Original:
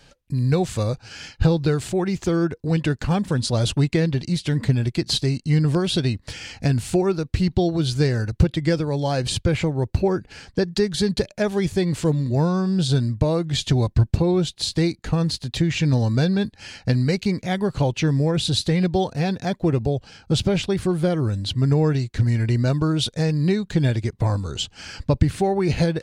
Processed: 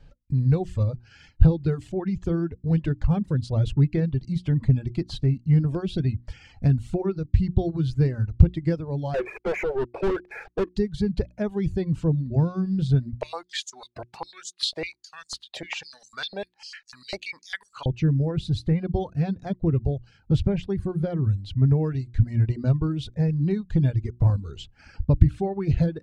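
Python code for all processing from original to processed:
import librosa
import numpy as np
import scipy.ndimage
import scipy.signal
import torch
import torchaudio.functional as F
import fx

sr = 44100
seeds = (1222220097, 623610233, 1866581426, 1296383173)

y = fx.chain(x, sr, fx.overload_stage(gain_db=18.0),
    fx.brickwall_bandpass(low_hz=340.0, high_hz=2600.0),
    fx.leveller(passes=5), at=(9.14, 10.75))
y = fx.chain(y, sr, fx.high_shelf(hz=2600.0, db=11.5),
    fx.filter_held_highpass(hz=10.0, low_hz=620.0, high_hz=6600.0), at=(13.13, 17.86))
y = fx.hum_notches(y, sr, base_hz=60, count=6)
y = fx.dereverb_blind(y, sr, rt60_s=1.2)
y = fx.riaa(y, sr, side='playback')
y = y * 10.0 ** (-9.0 / 20.0)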